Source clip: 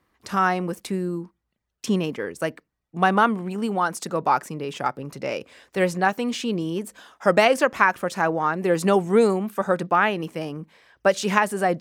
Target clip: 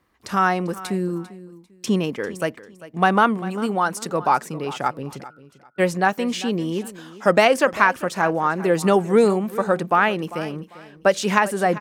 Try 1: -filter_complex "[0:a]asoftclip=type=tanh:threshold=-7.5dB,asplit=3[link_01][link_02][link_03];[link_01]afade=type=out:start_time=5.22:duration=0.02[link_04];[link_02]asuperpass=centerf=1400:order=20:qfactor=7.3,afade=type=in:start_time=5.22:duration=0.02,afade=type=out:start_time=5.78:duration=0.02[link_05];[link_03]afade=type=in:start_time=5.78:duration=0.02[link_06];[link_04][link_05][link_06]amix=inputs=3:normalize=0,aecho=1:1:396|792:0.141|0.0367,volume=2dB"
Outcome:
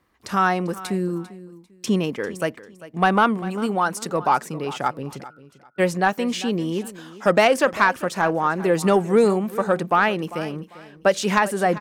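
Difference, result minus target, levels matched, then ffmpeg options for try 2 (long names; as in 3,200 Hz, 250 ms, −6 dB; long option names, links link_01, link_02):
soft clipping: distortion +13 dB
-filter_complex "[0:a]asoftclip=type=tanh:threshold=0dB,asplit=3[link_01][link_02][link_03];[link_01]afade=type=out:start_time=5.22:duration=0.02[link_04];[link_02]asuperpass=centerf=1400:order=20:qfactor=7.3,afade=type=in:start_time=5.22:duration=0.02,afade=type=out:start_time=5.78:duration=0.02[link_05];[link_03]afade=type=in:start_time=5.78:duration=0.02[link_06];[link_04][link_05][link_06]amix=inputs=3:normalize=0,aecho=1:1:396|792:0.141|0.0367,volume=2dB"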